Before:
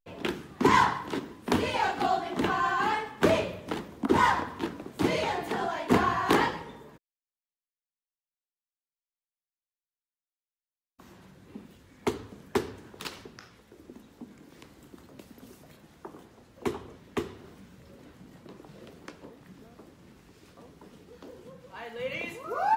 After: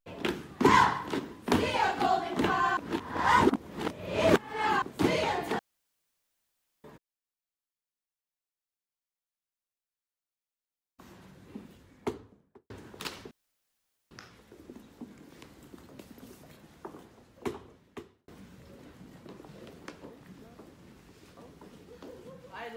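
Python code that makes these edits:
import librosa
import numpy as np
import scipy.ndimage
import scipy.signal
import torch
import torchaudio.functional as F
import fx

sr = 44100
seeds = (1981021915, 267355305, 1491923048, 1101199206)

y = fx.studio_fade_out(x, sr, start_s=11.59, length_s=1.11)
y = fx.edit(y, sr, fx.reverse_span(start_s=2.77, length_s=2.05),
    fx.room_tone_fill(start_s=5.59, length_s=1.25),
    fx.insert_room_tone(at_s=13.31, length_s=0.8),
    fx.fade_out_span(start_s=16.15, length_s=1.33), tone=tone)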